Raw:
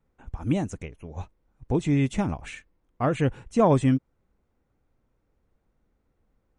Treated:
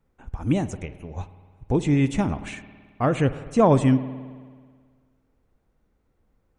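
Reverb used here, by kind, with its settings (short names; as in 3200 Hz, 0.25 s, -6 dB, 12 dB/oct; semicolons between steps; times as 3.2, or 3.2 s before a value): spring tank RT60 1.7 s, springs 54 ms, chirp 50 ms, DRR 13.5 dB; gain +2.5 dB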